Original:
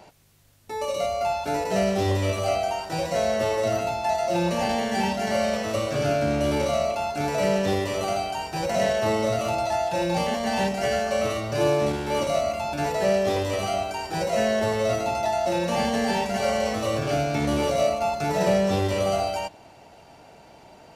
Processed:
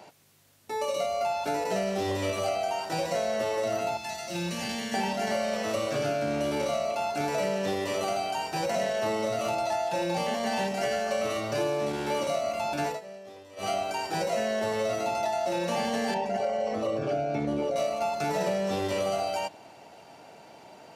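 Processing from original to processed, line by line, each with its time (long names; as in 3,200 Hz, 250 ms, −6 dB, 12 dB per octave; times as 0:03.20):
0:03.97–0:04.94: parametric band 670 Hz −15 dB 1.9 octaves
0:12.87–0:13.70: duck −22 dB, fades 0.14 s
0:16.14–0:17.76: spectral envelope exaggerated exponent 1.5
whole clip: Bessel high-pass filter 180 Hz, order 2; downward compressor, threshold −25 dBFS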